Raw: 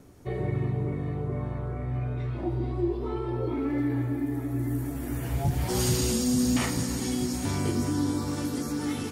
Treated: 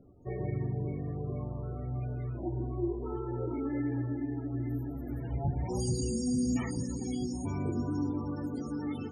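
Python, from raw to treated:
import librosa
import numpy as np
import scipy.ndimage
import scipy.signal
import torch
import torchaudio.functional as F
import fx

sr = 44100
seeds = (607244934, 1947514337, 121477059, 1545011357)

y = fx.spec_topn(x, sr, count=32)
y = fx.echo_wet_bandpass(y, sr, ms=110, feedback_pct=72, hz=560.0, wet_db=-22.0)
y = y * 10.0 ** (-5.0 / 20.0)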